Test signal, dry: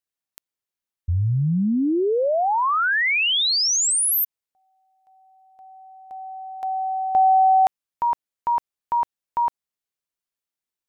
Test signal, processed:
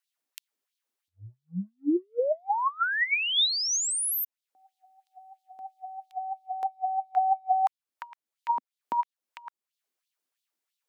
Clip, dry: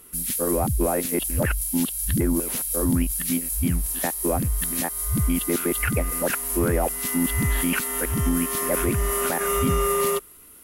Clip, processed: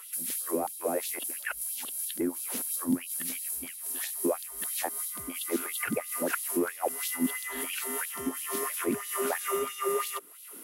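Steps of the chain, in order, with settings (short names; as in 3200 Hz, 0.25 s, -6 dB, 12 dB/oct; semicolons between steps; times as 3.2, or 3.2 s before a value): compressor 2:1, threshold -40 dBFS; LFO high-pass sine 3 Hz 240–3800 Hz; gain +2.5 dB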